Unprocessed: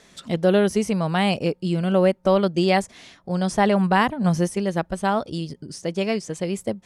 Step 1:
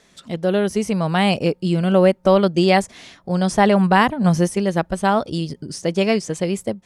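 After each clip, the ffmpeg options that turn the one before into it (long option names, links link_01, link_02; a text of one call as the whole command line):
ffmpeg -i in.wav -af "dynaudnorm=framelen=340:gausssize=5:maxgain=11.5dB,volume=-2.5dB" out.wav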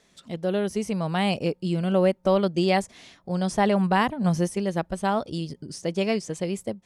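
ffmpeg -i in.wav -af "equalizer=frequency=1500:width_type=o:width=0.77:gain=-2,volume=-6.5dB" out.wav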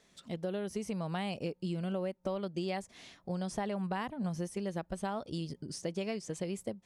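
ffmpeg -i in.wav -af "acompressor=threshold=-28dB:ratio=6,volume=-4.5dB" out.wav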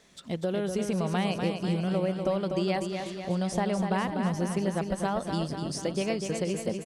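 ffmpeg -i in.wav -af "aecho=1:1:246|492|738|984|1230|1476|1722|1968:0.501|0.291|0.169|0.0978|0.0567|0.0329|0.0191|0.0111,volume=6.5dB" out.wav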